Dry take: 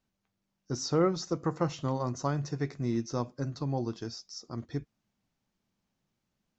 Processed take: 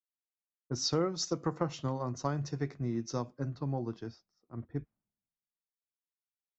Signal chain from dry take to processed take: level-controlled noise filter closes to 770 Hz, open at -27 dBFS; compression 10:1, threshold -29 dBFS, peak gain reduction 9 dB; three bands expanded up and down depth 100%

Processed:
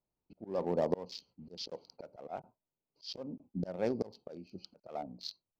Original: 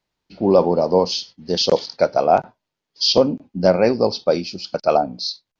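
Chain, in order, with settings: local Wiener filter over 25 samples; slow attack 518 ms; trim -8.5 dB

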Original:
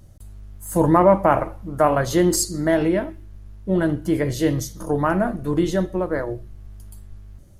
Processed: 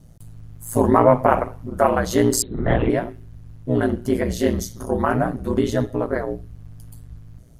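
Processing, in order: 2.42–2.90 s: LPC vocoder at 8 kHz whisper; ring modulator 59 Hz; trim +3 dB

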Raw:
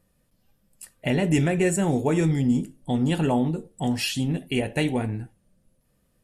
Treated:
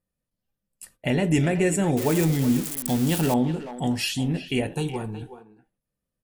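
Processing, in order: 1.97–3.34 s: zero-crossing glitches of -18.5 dBFS; gate -53 dBFS, range -17 dB; 4.72–5.22 s: static phaser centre 400 Hz, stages 8; speakerphone echo 370 ms, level -11 dB

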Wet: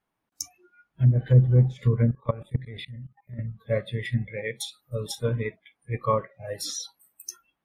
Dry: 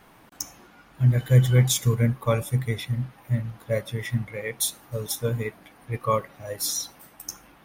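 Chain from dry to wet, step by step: spectral noise reduction 28 dB; low-pass that closes with the level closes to 530 Hz, closed at -15 dBFS; 2.11–3.39 s: level held to a coarse grid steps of 19 dB

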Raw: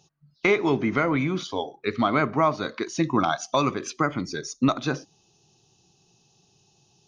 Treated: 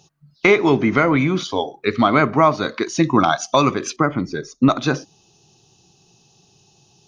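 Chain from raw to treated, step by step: 3.96–4.70 s: low-pass 1.5 kHz 6 dB/octave; trim +7 dB

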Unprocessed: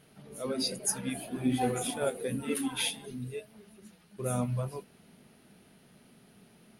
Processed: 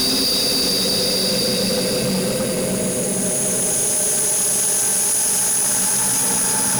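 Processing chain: Paulstretch 23×, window 0.25 s, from 0.66 s; fuzz box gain 44 dB, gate -47 dBFS; trim -3.5 dB

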